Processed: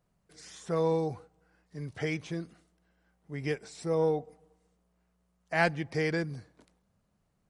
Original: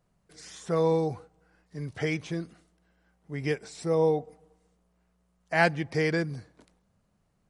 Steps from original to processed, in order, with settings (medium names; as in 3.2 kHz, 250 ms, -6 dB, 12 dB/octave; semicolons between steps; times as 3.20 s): single-diode clipper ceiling -8 dBFS; trim -3 dB